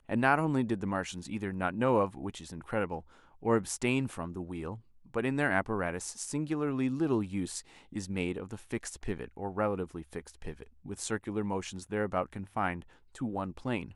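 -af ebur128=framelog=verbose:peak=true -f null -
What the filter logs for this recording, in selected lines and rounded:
Integrated loudness:
  I:         -33.4 LUFS
  Threshold: -43.7 LUFS
Loudness range:
  LRA:         4.8 LU
  Threshold: -54.1 LUFS
  LRA low:   -37.3 LUFS
  LRA high:  -32.5 LUFS
True peak:
  Peak:      -12.3 dBFS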